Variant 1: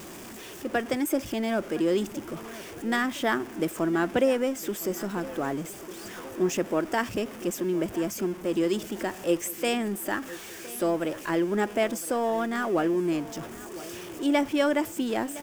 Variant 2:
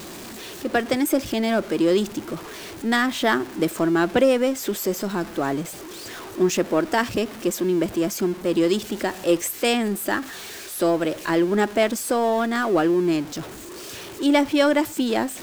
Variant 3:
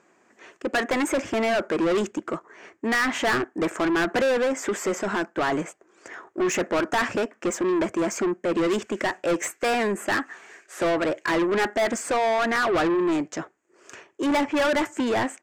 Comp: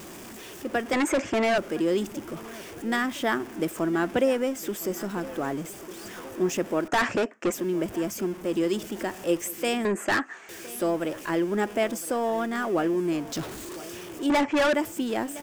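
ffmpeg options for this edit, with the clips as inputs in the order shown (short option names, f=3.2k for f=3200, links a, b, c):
-filter_complex "[2:a]asplit=4[a][b][c][d];[0:a]asplit=6[e][f][g][h][i][j];[e]atrim=end=0.932[k];[a]atrim=start=0.928:end=1.582[l];[f]atrim=start=1.578:end=6.882[m];[b]atrim=start=6.878:end=7.522[n];[g]atrim=start=7.518:end=9.852[o];[c]atrim=start=9.848:end=10.492[p];[h]atrim=start=10.488:end=13.322[q];[1:a]atrim=start=13.318:end=13.762[r];[i]atrim=start=13.758:end=14.302[s];[d]atrim=start=14.298:end=14.742[t];[j]atrim=start=14.738[u];[k][l]acrossfade=d=0.004:c1=hsin:c2=hsin[v];[v][m]acrossfade=d=0.004:c1=hsin:c2=hsin[w];[w][n]acrossfade=d=0.004:c1=hsin:c2=hsin[x];[x][o]acrossfade=d=0.004:c1=hsin:c2=hsin[y];[y][p]acrossfade=d=0.004:c1=hsin:c2=hsin[z];[z][q]acrossfade=d=0.004:c1=hsin:c2=hsin[aa];[aa][r]acrossfade=d=0.004:c1=hsin:c2=hsin[ab];[ab][s]acrossfade=d=0.004:c1=hsin:c2=hsin[ac];[ac][t]acrossfade=d=0.004:c1=hsin:c2=hsin[ad];[ad][u]acrossfade=d=0.004:c1=hsin:c2=hsin"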